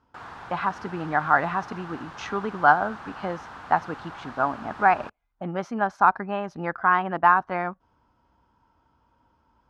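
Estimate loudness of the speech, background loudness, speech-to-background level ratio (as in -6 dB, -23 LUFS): -24.5 LUFS, -41.0 LUFS, 16.5 dB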